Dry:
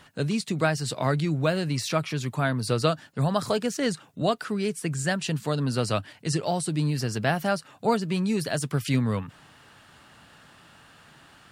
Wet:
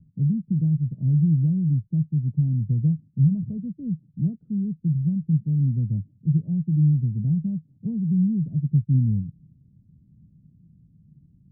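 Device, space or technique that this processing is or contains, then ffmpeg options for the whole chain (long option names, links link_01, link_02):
the neighbour's flat through the wall: -af "lowpass=frequency=190:width=0.5412,lowpass=frequency=190:width=1.3066,equalizer=frequency=170:width_type=o:width=0.64:gain=4.5,volume=5.5dB"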